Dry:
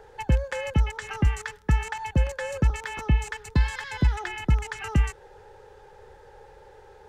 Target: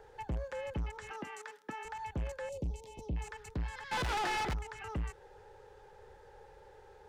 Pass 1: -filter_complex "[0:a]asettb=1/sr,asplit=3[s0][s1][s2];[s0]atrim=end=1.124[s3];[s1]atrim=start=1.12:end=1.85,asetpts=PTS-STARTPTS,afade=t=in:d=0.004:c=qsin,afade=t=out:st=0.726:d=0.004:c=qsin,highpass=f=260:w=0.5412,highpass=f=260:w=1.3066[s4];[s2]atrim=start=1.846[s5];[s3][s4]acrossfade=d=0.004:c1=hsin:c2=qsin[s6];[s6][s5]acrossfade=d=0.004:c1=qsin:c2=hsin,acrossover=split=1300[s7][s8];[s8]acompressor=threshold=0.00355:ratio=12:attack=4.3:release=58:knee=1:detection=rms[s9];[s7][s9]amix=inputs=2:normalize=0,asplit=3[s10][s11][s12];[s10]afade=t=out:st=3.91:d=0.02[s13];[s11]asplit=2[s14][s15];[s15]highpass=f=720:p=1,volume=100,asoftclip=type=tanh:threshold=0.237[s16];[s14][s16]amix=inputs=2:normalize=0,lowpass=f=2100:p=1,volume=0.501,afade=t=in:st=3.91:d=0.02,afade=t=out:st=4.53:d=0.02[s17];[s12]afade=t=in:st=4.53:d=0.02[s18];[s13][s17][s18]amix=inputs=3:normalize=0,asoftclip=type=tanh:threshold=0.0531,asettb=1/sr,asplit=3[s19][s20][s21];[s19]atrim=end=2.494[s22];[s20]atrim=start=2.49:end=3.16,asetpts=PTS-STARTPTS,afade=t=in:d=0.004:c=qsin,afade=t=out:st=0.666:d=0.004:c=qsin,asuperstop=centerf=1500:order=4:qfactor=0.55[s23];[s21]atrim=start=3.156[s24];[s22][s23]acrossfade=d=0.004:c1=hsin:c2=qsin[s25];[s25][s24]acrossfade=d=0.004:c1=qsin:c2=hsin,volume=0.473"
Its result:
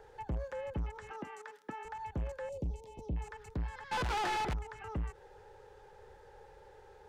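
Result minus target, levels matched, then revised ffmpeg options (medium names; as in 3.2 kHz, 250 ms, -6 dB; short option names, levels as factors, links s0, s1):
compression: peak gain reduction +7.5 dB
-filter_complex "[0:a]asettb=1/sr,asplit=3[s0][s1][s2];[s0]atrim=end=1.124[s3];[s1]atrim=start=1.12:end=1.85,asetpts=PTS-STARTPTS,afade=t=in:d=0.004:c=qsin,afade=t=out:st=0.726:d=0.004:c=qsin,highpass=f=260:w=0.5412,highpass=f=260:w=1.3066[s4];[s2]atrim=start=1.846[s5];[s3][s4]acrossfade=d=0.004:c1=hsin:c2=qsin[s6];[s6][s5]acrossfade=d=0.004:c1=qsin:c2=hsin,acrossover=split=1300[s7][s8];[s8]acompressor=threshold=0.00891:ratio=12:attack=4.3:release=58:knee=1:detection=rms[s9];[s7][s9]amix=inputs=2:normalize=0,asplit=3[s10][s11][s12];[s10]afade=t=out:st=3.91:d=0.02[s13];[s11]asplit=2[s14][s15];[s15]highpass=f=720:p=1,volume=100,asoftclip=type=tanh:threshold=0.237[s16];[s14][s16]amix=inputs=2:normalize=0,lowpass=f=2100:p=1,volume=0.501,afade=t=in:st=3.91:d=0.02,afade=t=out:st=4.53:d=0.02[s17];[s12]afade=t=in:st=4.53:d=0.02[s18];[s13][s17][s18]amix=inputs=3:normalize=0,asoftclip=type=tanh:threshold=0.0531,asettb=1/sr,asplit=3[s19][s20][s21];[s19]atrim=end=2.494[s22];[s20]atrim=start=2.49:end=3.16,asetpts=PTS-STARTPTS,afade=t=in:d=0.004:c=qsin,afade=t=out:st=0.666:d=0.004:c=qsin,asuperstop=centerf=1500:order=4:qfactor=0.55[s23];[s21]atrim=start=3.156[s24];[s22][s23]acrossfade=d=0.004:c1=hsin:c2=qsin[s25];[s25][s24]acrossfade=d=0.004:c1=qsin:c2=hsin,volume=0.473"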